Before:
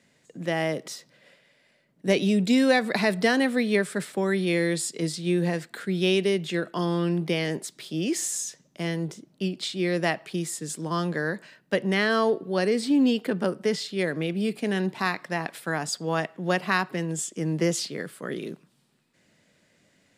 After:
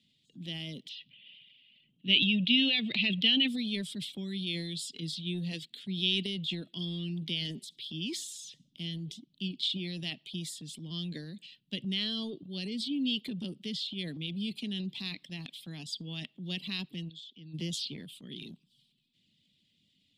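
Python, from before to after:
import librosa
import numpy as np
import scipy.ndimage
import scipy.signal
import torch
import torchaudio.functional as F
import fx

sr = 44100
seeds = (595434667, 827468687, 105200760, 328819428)

y = fx.lowpass_res(x, sr, hz=2800.0, q=5.4, at=(0.89, 3.48))
y = fx.echo_feedback(y, sr, ms=67, feedback_pct=44, wet_db=-22.5, at=(7.27, 9.11))
y = fx.ladder_lowpass(y, sr, hz=4200.0, resonance_pct=70, at=(17.08, 17.53), fade=0.02)
y = fx.dereverb_blind(y, sr, rt60_s=0.54)
y = fx.curve_eq(y, sr, hz=(240.0, 520.0, 1500.0, 3300.0, 6300.0), db=(0, -19, -26, 13, -8))
y = fx.transient(y, sr, attack_db=0, sustain_db=8)
y = y * librosa.db_to_amplitude(-7.5)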